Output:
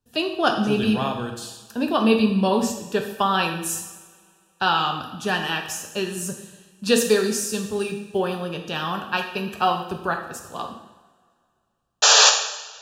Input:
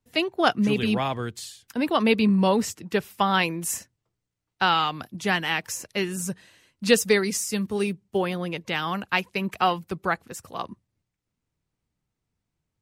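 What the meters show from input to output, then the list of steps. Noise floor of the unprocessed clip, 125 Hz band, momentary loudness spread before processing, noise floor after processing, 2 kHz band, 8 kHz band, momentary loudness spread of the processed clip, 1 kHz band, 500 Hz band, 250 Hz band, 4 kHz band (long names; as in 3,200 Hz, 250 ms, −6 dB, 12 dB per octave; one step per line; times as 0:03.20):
−83 dBFS, 0.0 dB, 12 LU, −68 dBFS, +1.5 dB, +9.5 dB, 14 LU, +2.5 dB, +2.0 dB, +1.5 dB, +7.5 dB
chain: sound drawn into the spectrogram noise, 0:12.02–0:12.30, 420–7,400 Hz −14 dBFS
Butterworth band-reject 2,100 Hz, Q 3.4
coupled-rooms reverb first 0.88 s, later 2.5 s, from −19 dB, DRR 3 dB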